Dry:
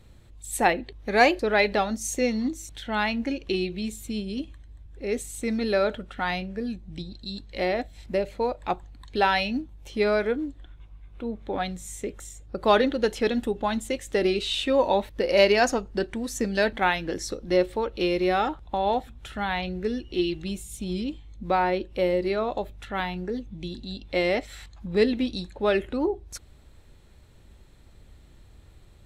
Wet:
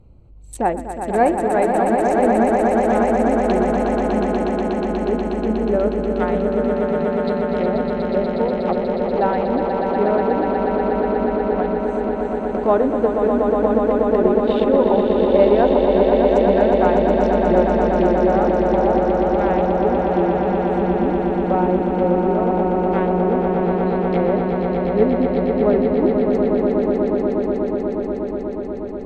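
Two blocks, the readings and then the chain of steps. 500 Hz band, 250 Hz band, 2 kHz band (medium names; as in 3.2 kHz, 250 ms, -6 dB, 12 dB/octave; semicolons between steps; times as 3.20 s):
+10.0 dB, +10.5 dB, -1.5 dB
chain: local Wiener filter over 25 samples; low-pass that closes with the level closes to 900 Hz, closed at -23.5 dBFS; echo with a slow build-up 121 ms, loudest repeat 8, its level -6 dB; trim +4.5 dB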